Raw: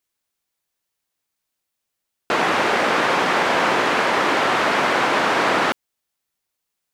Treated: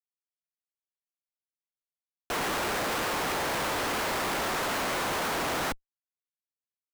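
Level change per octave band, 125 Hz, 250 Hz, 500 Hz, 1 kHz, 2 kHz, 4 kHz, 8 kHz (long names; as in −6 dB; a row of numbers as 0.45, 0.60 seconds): −5.5, −10.5, −11.5, −12.0, −12.0, −8.5, −1.5 decibels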